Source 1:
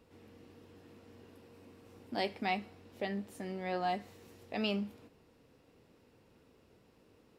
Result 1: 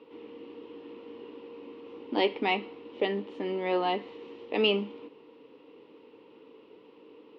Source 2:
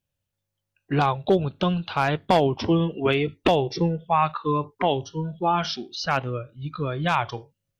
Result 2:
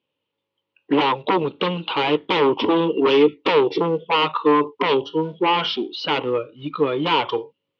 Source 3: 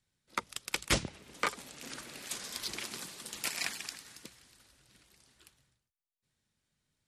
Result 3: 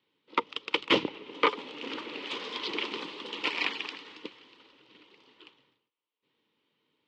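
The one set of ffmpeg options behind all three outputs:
ffmpeg -i in.wav -af "aeval=exprs='0.376*sin(PI/2*3.55*val(0)/0.376)':channel_layout=same,acrusher=bits=8:mode=log:mix=0:aa=0.000001,highpass=300,equalizer=frequency=300:width_type=q:width=4:gain=9,equalizer=frequency=450:width_type=q:width=4:gain=9,equalizer=frequency=680:width_type=q:width=4:gain=-9,equalizer=frequency=970:width_type=q:width=4:gain=7,equalizer=frequency=1600:width_type=q:width=4:gain=-9,equalizer=frequency=3000:width_type=q:width=4:gain=6,lowpass=frequency=3500:width=0.5412,lowpass=frequency=3500:width=1.3066,volume=-6.5dB" out.wav

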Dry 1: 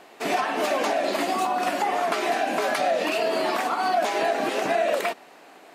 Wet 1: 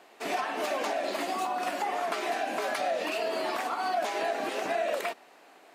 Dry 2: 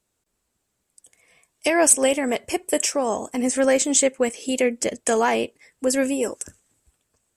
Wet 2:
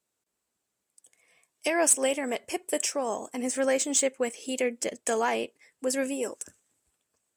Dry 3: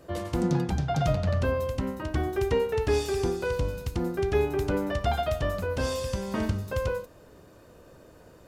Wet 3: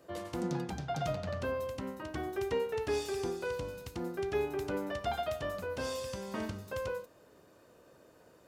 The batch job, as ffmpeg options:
ffmpeg -i in.wav -filter_complex "[0:a]highpass=frequency=240:poles=1,acrossover=split=4300[link_01][link_02];[link_02]acrusher=bits=5:mode=log:mix=0:aa=0.000001[link_03];[link_01][link_03]amix=inputs=2:normalize=0,volume=-6dB" out.wav

